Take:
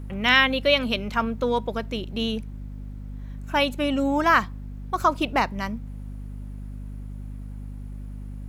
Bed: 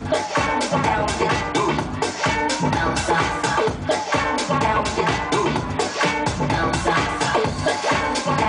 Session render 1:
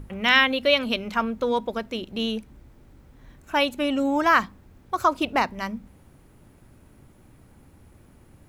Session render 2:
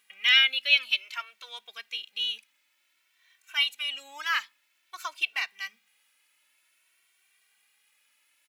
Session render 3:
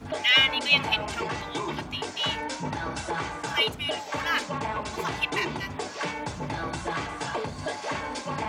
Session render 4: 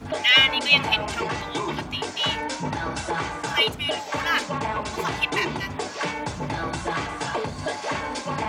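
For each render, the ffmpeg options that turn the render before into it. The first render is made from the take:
-af "bandreject=f=50:t=h:w=6,bandreject=f=100:t=h:w=6,bandreject=f=150:t=h:w=6,bandreject=f=200:t=h:w=6,bandreject=f=250:t=h:w=6"
-filter_complex "[0:a]highpass=f=2.5k:t=q:w=1.8,asplit=2[a][b];[b]adelay=2.1,afreqshift=0.53[c];[a][c]amix=inputs=2:normalize=1"
-filter_complex "[1:a]volume=-11.5dB[a];[0:a][a]amix=inputs=2:normalize=0"
-af "volume=3.5dB"

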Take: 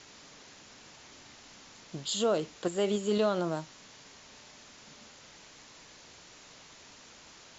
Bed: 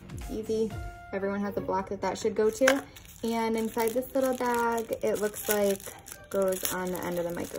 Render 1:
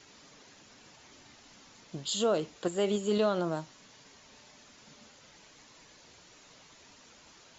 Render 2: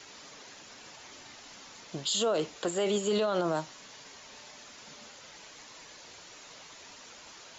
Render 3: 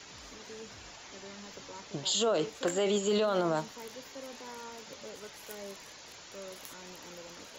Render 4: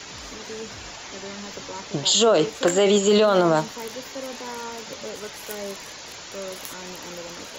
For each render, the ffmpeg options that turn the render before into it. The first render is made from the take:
-af "afftdn=nr=6:nf=-54"
-filter_complex "[0:a]acrossover=split=390[a][b];[b]acontrast=82[c];[a][c]amix=inputs=2:normalize=0,alimiter=limit=-20.5dB:level=0:latency=1:release=17"
-filter_complex "[1:a]volume=-19dB[a];[0:a][a]amix=inputs=2:normalize=0"
-af "volume=11dB"

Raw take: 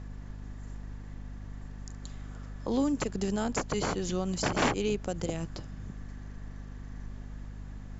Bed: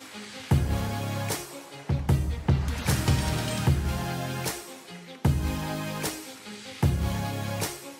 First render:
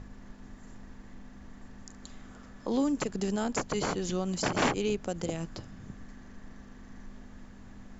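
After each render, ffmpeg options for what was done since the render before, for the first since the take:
-af "bandreject=f=50:t=h:w=6,bandreject=f=100:t=h:w=6,bandreject=f=150:t=h:w=6"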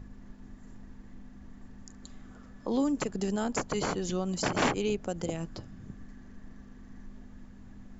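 -af "afftdn=nr=6:nf=-50"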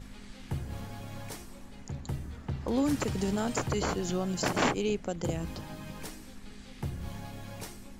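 -filter_complex "[1:a]volume=-12.5dB[a];[0:a][a]amix=inputs=2:normalize=0"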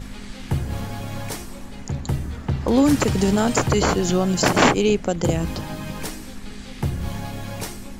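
-af "volume=11.5dB"

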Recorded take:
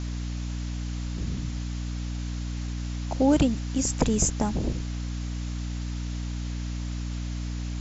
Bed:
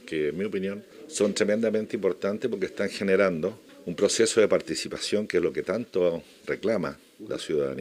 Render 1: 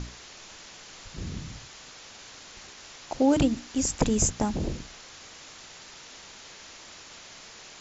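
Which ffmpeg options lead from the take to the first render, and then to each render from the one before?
-af "bandreject=f=60:t=h:w=6,bandreject=f=120:t=h:w=6,bandreject=f=180:t=h:w=6,bandreject=f=240:t=h:w=6,bandreject=f=300:t=h:w=6"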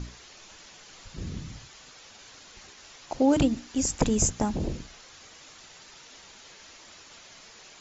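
-af "afftdn=nr=6:nf=-48"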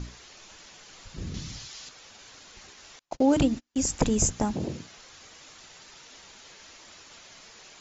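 -filter_complex "[0:a]asettb=1/sr,asplit=3[a][b][c];[a]atrim=end=1.344[d];[b]atrim=start=1.34:end=1.89,asetpts=PTS-STARTPTS,afade=t=in:d=0.004:c=qsin,afade=t=out:st=0.546:d=0.004:c=qsin,equalizer=f=4.9k:t=o:w=1.6:g=9.5[e];[c]atrim=start=1.886[f];[d][e]acrossfade=d=0.004:c1=hsin:c2=qsin[g];[g][f]acrossfade=d=0.004:c1=qsin:c2=hsin,asettb=1/sr,asplit=3[h][i][j];[h]atrim=end=2.994[k];[i]atrim=start=2.99:end=3.76,asetpts=PTS-STARTPTS,afade=t=in:d=0.004:c=qsin,afade=t=out:st=0.766:d=0.004:c=qsin,agate=range=-35dB:threshold=-37dB:ratio=16:release=100:detection=peak[l];[j]atrim=start=3.756[m];[k][l]acrossfade=d=0.004:c1=hsin:c2=qsin[n];[n][m]acrossfade=d=0.004:c1=qsin:c2=hsin,asettb=1/sr,asplit=3[o][p][q];[o]atrim=end=4.534[r];[p]atrim=start=4.53:end=4.98,asetpts=PTS-STARTPTS,afade=t=in:d=0.004:c=qsin,afade=t=out:st=0.446:d=0.004:c=qsin,highpass=f=93:w=0.5412,highpass=f=93:w=1.3066[s];[q]atrim=start=4.976[t];[r][s]acrossfade=d=0.004:c1=hsin:c2=qsin[u];[u][t]acrossfade=d=0.004:c1=qsin:c2=hsin"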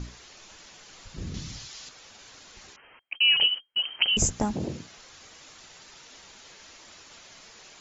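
-filter_complex "[0:a]asettb=1/sr,asplit=3[a][b][c];[a]atrim=end=2.764[d];[b]atrim=start=2.76:end=4.17,asetpts=PTS-STARTPTS,afade=t=in:d=0.004:c=qsin,afade=t=out:st=1.406:d=0.004:c=qsin,lowpass=f=2.7k:t=q:w=0.5098,lowpass=f=2.7k:t=q:w=0.6013,lowpass=f=2.7k:t=q:w=0.9,lowpass=f=2.7k:t=q:w=2.563,afreqshift=-3200[e];[c]atrim=start=4.166[f];[d][e]acrossfade=d=0.004:c1=hsin:c2=qsin[g];[g][f]acrossfade=d=0.004:c1=qsin:c2=hsin"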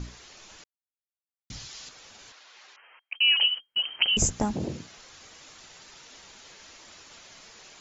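-filter_complex "[0:a]asettb=1/sr,asplit=3[a][b][c];[a]atrim=end=2.324[d];[b]atrim=start=2.32:end=3.57,asetpts=PTS-STARTPTS,afade=t=in:d=0.004:c=qsin,afade=t=out:st=1.246:d=0.004:c=qsin,highpass=730,lowpass=4.4k[e];[c]atrim=start=3.566[f];[d][e]acrossfade=d=0.004:c1=hsin:c2=qsin[g];[g][f]acrossfade=d=0.004:c1=qsin:c2=hsin,asplit=3[h][i][j];[h]atrim=end=0.64,asetpts=PTS-STARTPTS,afade=t=out:st=0.636:d=0.004:c=hsin[k];[i]atrim=start=0.64:end=1.5,asetpts=PTS-STARTPTS,volume=0[l];[j]atrim=start=1.5,asetpts=PTS-STARTPTS,afade=t=in:d=0.004:c=hsin[m];[k][l][m]concat=n=3:v=0:a=1"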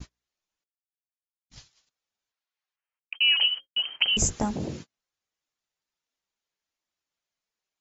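-af "bandreject=f=60:t=h:w=6,bandreject=f=120:t=h:w=6,bandreject=f=180:t=h:w=6,bandreject=f=240:t=h:w=6,bandreject=f=300:t=h:w=6,bandreject=f=360:t=h:w=6,bandreject=f=420:t=h:w=6,bandreject=f=480:t=h:w=6,bandreject=f=540:t=h:w=6,agate=range=-40dB:threshold=-39dB:ratio=16:detection=peak"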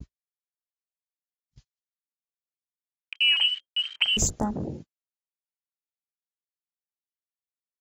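-af "afwtdn=0.00891,agate=range=-19dB:threshold=-53dB:ratio=16:detection=peak"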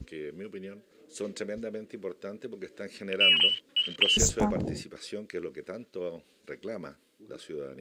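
-filter_complex "[1:a]volume=-12dB[a];[0:a][a]amix=inputs=2:normalize=0"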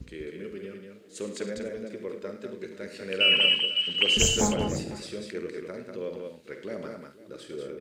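-filter_complex "[0:a]asplit=2[a][b];[b]adelay=49,volume=-11.5dB[c];[a][c]amix=inputs=2:normalize=0,aecho=1:1:72|105|194|499:0.282|0.251|0.596|0.133"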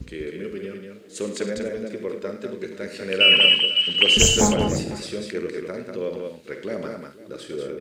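-af "volume=6.5dB"

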